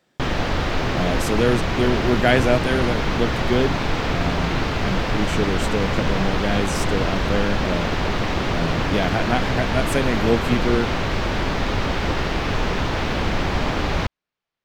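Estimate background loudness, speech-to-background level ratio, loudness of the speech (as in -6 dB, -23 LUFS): -23.5 LUFS, -0.5 dB, -24.0 LUFS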